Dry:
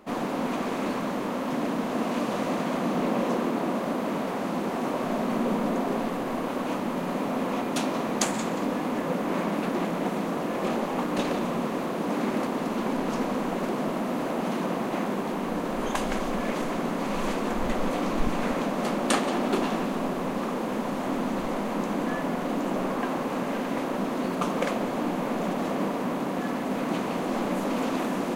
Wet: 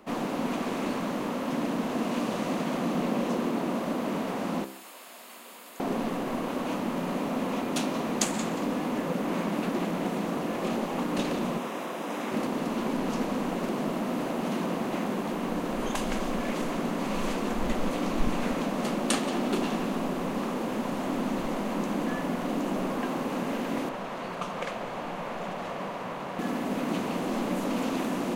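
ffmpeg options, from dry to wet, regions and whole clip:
-filter_complex "[0:a]asettb=1/sr,asplit=3[a][b][c];[a]atrim=end=4.644[d];[b]atrim=start=4.64:end=5.8,asetpts=PTS-STARTPTS,afade=t=in:d=0.004:c=qsin,afade=t=out:st=1.156:d=0.004:c=qsin,highpass=190,aderivative,bandreject=f=5.9k:w=6.7[e];[c]atrim=start=5.796[f];[d][e]acrossfade=d=0.004:c1=hsin:c2=qsin[g];[g][f]acrossfade=d=0.004:c1=qsin:c2=hsin,asettb=1/sr,asplit=3[h][i][j];[h]atrim=end=11.584[k];[i]atrim=start=11.58:end=12.32,asetpts=PTS-STARTPTS,afade=t=in:d=0.004:c=qsin,afade=t=out:st=0.736:d=0.004:c=qsin,highpass=f=510:p=1,bandreject=f=4.4k:w=8.6[l];[j]atrim=start=12.316[m];[k][l]acrossfade=d=0.004:c1=hsin:c2=qsin[n];[n][m]acrossfade=d=0.004:c1=qsin:c2=hsin,asettb=1/sr,asplit=3[o][p][q];[o]atrim=end=23.894[r];[p]atrim=start=23.89:end=26.39,asetpts=PTS-STARTPTS,afade=t=in:d=0.004:c=qsin,afade=t=out:st=2.496:d=0.004:c=qsin,lowpass=f=3.4k:p=1,equalizer=f=270:w=1.2:g=-14[s];[q]atrim=start=26.386[t];[r][s]acrossfade=d=0.004:c1=hsin:c2=qsin[u];[u][t]acrossfade=d=0.004:c1=qsin:c2=hsin,equalizer=f=2.8k:t=o:w=0.23:g=2,bandreject=f=65.86:t=h:w=4,bandreject=f=131.72:t=h:w=4,bandreject=f=197.58:t=h:w=4,bandreject=f=263.44:t=h:w=4,bandreject=f=329.3:t=h:w=4,bandreject=f=395.16:t=h:w=4,bandreject=f=461.02:t=h:w=4,bandreject=f=526.88:t=h:w=4,bandreject=f=592.74:t=h:w=4,bandreject=f=658.6:t=h:w=4,bandreject=f=724.46:t=h:w=4,bandreject=f=790.32:t=h:w=4,bandreject=f=856.18:t=h:w=4,bandreject=f=922.04:t=h:w=4,bandreject=f=987.9:t=h:w=4,bandreject=f=1.05376k:t=h:w=4,bandreject=f=1.11962k:t=h:w=4,bandreject=f=1.18548k:t=h:w=4,bandreject=f=1.25134k:t=h:w=4,bandreject=f=1.3172k:t=h:w=4,bandreject=f=1.38306k:t=h:w=4,bandreject=f=1.44892k:t=h:w=4,bandreject=f=1.51478k:t=h:w=4,bandreject=f=1.58064k:t=h:w=4,bandreject=f=1.6465k:t=h:w=4,bandreject=f=1.71236k:t=h:w=4,bandreject=f=1.77822k:t=h:w=4,acrossover=split=330|3000[v][w][x];[w]acompressor=threshold=-33dB:ratio=2[y];[v][y][x]amix=inputs=3:normalize=0"

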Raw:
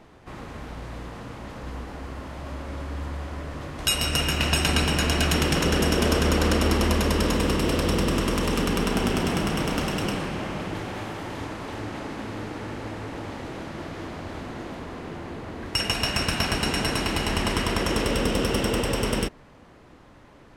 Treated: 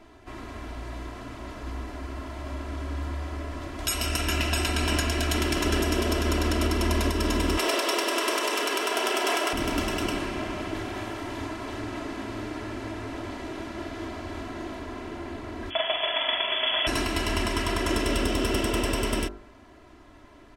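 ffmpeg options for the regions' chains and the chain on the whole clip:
-filter_complex "[0:a]asettb=1/sr,asplit=3[a][b][c];[a]atrim=end=7.574[d];[b]atrim=start=7.57:end=9.53,asetpts=PTS-STARTPTS,afade=t=in:d=0.004:c=qsin,afade=t=out:st=1.956:d=0.004:c=qsin,highpass=f=430:w=0.5412,highpass=f=430:w=1.3066,acontrast=63[e];[c]atrim=start=9.526[f];[d][e]acrossfade=d=0.004:c1=hsin:c2=qsin[g];[g][f]acrossfade=d=0.004:c1=qsin:c2=hsin,asettb=1/sr,asplit=3[h][i][j];[h]atrim=end=15.704[k];[i]atrim=start=15.7:end=16.87,asetpts=PTS-STARTPTS,afade=t=in:d=0.004:c=qsin,afade=t=out:st=1.166:d=0.004:c=qsin,asplit=2[l][m];[m]adelay=42,volume=-7dB[n];[l][n]amix=inputs=2:normalize=0,atrim=end_sample=51597,lowpass=f=3k:t=q:w=0.5098,lowpass=f=3k:t=q:w=0.6013,lowpass=f=3k:t=q:w=0.9,lowpass=f=3k:t=q:w=2.563,afreqshift=-3500,equalizer=f=220:w=0.67:g=5.5[o];[j]atrim=start=16.866[p];[k][o]acrossfade=d=0.004:c1=hsin:c2=qsin[q];[q][p]acrossfade=d=0.004:c1=qsin:c2=hsin,aecho=1:1:3:0.76,bandreject=f=49.98:t=h:w=4,bandreject=f=99.96:t=h:w=4,bandreject=f=149.94:t=h:w=4,bandreject=f=199.92:t=h:w=4,bandreject=f=249.9:t=h:w=4,bandreject=f=299.88:t=h:w=4,bandreject=f=349.86:t=h:w=4,bandreject=f=399.84:t=h:w=4,bandreject=f=449.82:t=h:w=4,bandreject=f=499.8:t=h:w=4,bandreject=f=549.78:t=h:w=4,bandreject=f=599.76:t=h:w=4,bandreject=f=649.74:t=h:w=4,bandreject=f=699.72:t=h:w=4,bandreject=f=749.7:t=h:w=4,bandreject=f=799.68:t=h:w=4,bandreject=f=849.66:t=h:w=4,bandreject=f=899.64:t=h:w=4,bandreject=f=949.62:t=h:w=4,bandreject=f=999.6:t=h:w=4,bandreject=f=1.04958k:t=h:w=4,bandreject=f=1.09956k:t=h:w=4,bandreject=f=1.14954k:t=h:w=4,bandreject=f=1.19952k:t=h:w=4,bandreject=f=1.2495k:t=h:w=4,bandreject=f=1.29948k:t=h:w=4,bandreject=f=1.34946k:t=h:w=4,bandreject=f=1.39944k:t=h:w=4,bandreject=f=1.44942k:t=h:w=4,bandreject=f=1.4994k:t=h:w=4,bandreject=f=1.54938k:t=h:w=4,alimiter=limit=-12dB:level=0:latency=1:release=194,volume=-2dB"

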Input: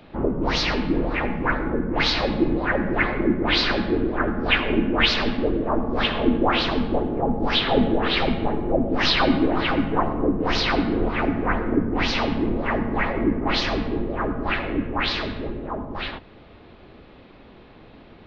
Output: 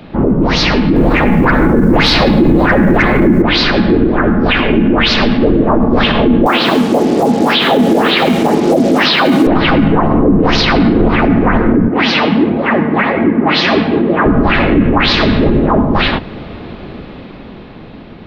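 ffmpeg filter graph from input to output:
-filter_complex "[0:a]asettb=1/sr,asplit=3[a][b][c];[a]atrim=end=0.964[d];[b]atrim=start=0.96:end=3.42,asetpts=PTS-STARTPTS,afade=t=in:d=0.004:c=qsin,afade=t=out:st=2.456:d=0.004:c=qsin,acontrast=89,acrusher=bits=7:mix=0:aa=0.5[e];[c]atrim=start=3.416[f];[d][e]acrossfade=d=0.004:c1=hsin:c2=qsin[g];[g][f]acrossfade=d=0.004:c1=qsin:c2=hsin,asettb=1/sr,asplit=3[h][i][j];[h]atrim=end=6.464[k];[i]atrim=start=6.46:end=9.47,asetpts=PTS-STARTPTS,afade=t=in:d=0.004:c=qsin,afade=t=out:st=3.006:d=0.004:c=qsin,highpass=240,acrusher=bits=5:mix=0:aa=0.5,acrossover=split=5200[l][m];[m]acompressor=threshold=-46dB:ratio=4:attack=1:release=60[n];[l][n]amix=inputs=2:normalize=0[o];[j]atrim=start=9.466[p];[k][o]acrossfade=d=0.004:c1=hsin:c2=qsin[q];[q][p]acrossfade=d=0.004:c1=qsin:c2=hsin,asettb=1/sr,asplit=3[r][s][t];[r]atrim=end=11.884[u];[s]atrim=start=11.88:end=14.26,asetpts=PTS-STARTPTS,afade=t=in:d=0.004:c=qsin,afade=t=out:st=2.376:d=0.004:c=qsin,highpass=170,lowpass=3.1k,highshelf=f=2.4k:g=9,flanger=delay=1.2:depth=5.6:regen=49:speed=1.5:shape=sinusoidal[v];[t]atrim=start=14.256[w];[u][v]acrossfade=d=0.004:c1=hsin:c2=qsin[x];[x][w]acrossfade=d=0.004:c1=qsin:c2=hsin,equalizer=f=180:t=o:w=1.2:g=6.5,dynaudnorm=f=400:g=9:m=11.5dB,alimiter=level_in=12dB:limit=-1dB:release=50:level=0:latency=1,volume=-1dB"

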